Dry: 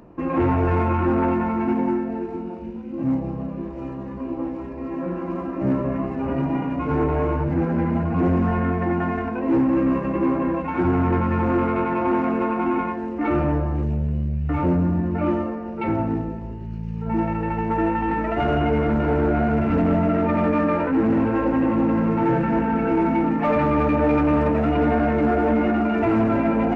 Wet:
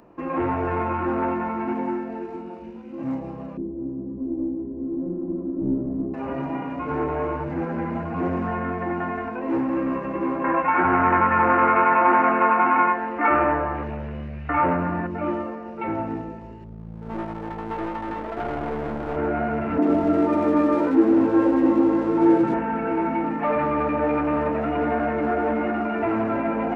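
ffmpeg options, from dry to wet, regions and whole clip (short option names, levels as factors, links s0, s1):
-filter_complex "[0:a]asettb=1/sr,asplit=3[s0][s1][s2];[s0]atrim=end=3.574[s3];[s1]atrim=start=3.57:end=6.14,asetpts=PTS-STARTPTS,afade=t=in:d=0.004:c=qsin,afade=t=out:st=2.566:d=0.004:c=qsin,aeval=exprs='clip(val(0),-1,0.0376)':c=same,lowpass=f=310:t=q:w=2.6,equalizer=f=62:t=o:w=2.6:g=5.5[s4];[s2]atrim=start=6.136[s5];[s3][s4]acrossfade=d=0.004:c1=hsin:c2=qsin[s6];[s6][s5]acrossfade=d=0.004:c1=qsin:c2=hsin,asettb=1/sr,asplit=3[s7][s8][s9];[s7]atrim=end=10.444[s10];[s8]atrim=start=10.44:end=15.07,asetpts=PTS-STARTPTS,afade=t=in:d=0.004:c=qsin,afade=t=out:st=4.626:d=0.004:c=qsin,lowpass=f=2600:p=1,equalizer=f=1800:w=0.4:g=14,bandreject=f=50:t=h:w=6,bandreject=f=100:t=h:w=6,bandreject=f=150:t=h:w=6,bandreject=f=200:t=h:w=6,bandreject=f=250:t=h:w=6,bandreject=f=300:t=h:w=6,bandreject=f=350:t=h:w=6,bandreject=f=400:t=h:w=6,bandreject=f=450:t=h:w=6,bandreject=f=500:t=h:w=6[s11];[s9]atrim=start=15.066[s12];[s10][s11]acrossfade=d=0.004:c1=hsin:c2=qsin[s13];[s13][s12]acrossfade=d=0.004:c1=qsin:c2=hsin,asettb=1/sr,asplit=3[s14][s15][s16];[s14]atrim=end=16.644[s17];[s15]atrim=start=16.64:end=19.17,asetpts=PTS-STARTPTS,afade=t=in:d=0.004:c=qsin,afade=t=out:st=2.526:d=0.004:c=qsin,lowshelf=f=100:g=2.5,adynamicsmooth=sensitivity=0.5:basefreq=670,aeval=exprs='clip(val(0),-1,0.0316)':c=same[s18];[s16]atrim=start=19.166[s19];[s17][s18]acrossfade=d=0.004:c1=hsin:c2=qsin[s20];[s20][s19]acrossfade=d=0.004:c1=qsin:c2=hsin,asettb=1/sr,asplit=3[s21][s22][s23];[s21]atrim=end=19.784[s24];[s22]atrim=start=19.78:end=22.54,asetpts=PTS-STARTPTS,afade=t=in:d=0.004:c=qsin,afade=t=out:st=2.756:d=0.004:c=qsin,equalizer=f=320:t=o:w=0.65:g=12,adynamicsmooth=sensitivity=7.5:basefreq=1200,acrossover=split=190|1900[s25][s26][s27];[s27]adelay=40[s28];[s25]adelay=110[s29];[s29][s26][s28]amix=inputs=3:normalize=0,atrim=end_sample=121716[s30];[s23]atrim=start=22.536[s31];[s24][s30]acrossfade=d=0.004:c1=hsin:c2=qsin[s32];[s32][s31]acrossfade=d=0.004:c1=qsin:c2=hsin,lowshelf=f=260:g=-11.5,acrossover=split=2600[s33][s34];[s34]acompressor=threshold=0.00178:ratio=4:attack=1:release=60[s35];[s33][s35]amix=inputs=2:normalize=0"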